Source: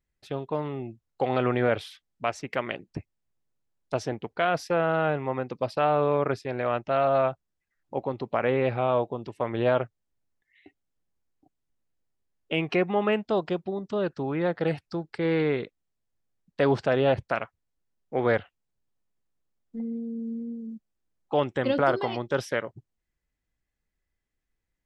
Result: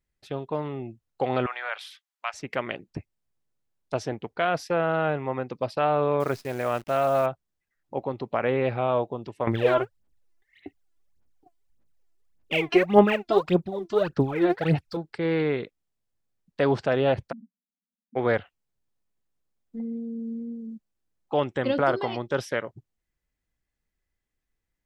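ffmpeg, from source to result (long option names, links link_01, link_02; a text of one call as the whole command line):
ffmpeg -i in.wav -filter_complex "[0:a]asettb=1/sr,asplit=3[link_01][link_02][link_03];[link_01]atrim=end=1.464[link_04];[link_02]atrim=start=1.46:end=2.34,asetpts=PTS-STARTPTS,afade=type=in:duration=0.004:curve=qsin,afade=type=out:start_time=0.876:duration=0.004:curve=qsin,highpass=frequency=880:width=0.5412,highpass=frequency=880:width=1.3066[link_05];[link_03]atrim=start=2.336[link_06];[link_04][link_05]acrossfade=duration=0.004:curve1=hsin:curve2=qsin[link_07];[link_07][link_06]acrossfade=duration=0.004:curve1=qsin:curve2=hsin,asettb=1/sr,asplit=3[link_08][link_09][link_10];[link_08]atrim=end=6.204[link_11];[link_09]atrim=start=6.2:end=7.26,asetpts=PTS-STARTPTS,afade=type=in:duration=0.004:curve=qsin,afade=type=out:start_time=1.056:duration=0.004:curve=qsin,acrusher=bits=8:dc=4:mix=0:aa=0.000001[link_12];[link_10]atrim=start=7.256[link_13];[link_11][link_12]acrossfade=duration=0.004:curve1=hsin:curve2=qsin[link_14];[link_14][link_13]acrossfade=duration=0.004:curve1=qsin:curve2=hsin,asettb=1/sr,asplit=3[link_15][link_16][link_17];[link_15]atrim=end=9.474[link_18];[link_16]atrim=start=9.47:end=14.97,asetpts=PTS-STARTPTS,afade=type=in:duration=0.004:curve=qsin,afade=type=out:start_time=5.496:duration=0.004:curve=qsin,aphaser=in_gain=1:out_gain=1:delay=3:decay=0.77:speed=1.7:type=sinusoidal[link_19];[link_17]atrim=start=14.966[link_20];[link_18][link_19]acrossfade=duration=0.004:curve1=hsin:curve2=qsin[link_21];[link_21][link_20]acrossfade=duration=0.004:curve1=qsin:curve2=hsin,asplit=3[link_22][link_23][link_24];[link_22]afade=type=out:start_time=17.31:duration=0.02[link_25];[link_23]asuperpass=centerf=220:order=8:qfactor=2.7,afade=type=in:start_time=17.31:duration=0.02,afade=type=out:start_time=18.15:duration=0.02[link_26];[link_24]afade=type=in:start_time=18.15:duration=0.02[link_27];[link_25][link_26][link_27]amix=inputs=3:normalize=0" out.wav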